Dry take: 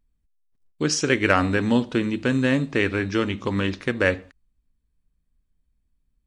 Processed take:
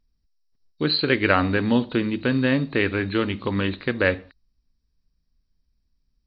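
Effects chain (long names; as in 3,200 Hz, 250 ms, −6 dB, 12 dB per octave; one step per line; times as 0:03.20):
hearing-aid frequency compression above 3,700 Hz 4 to 1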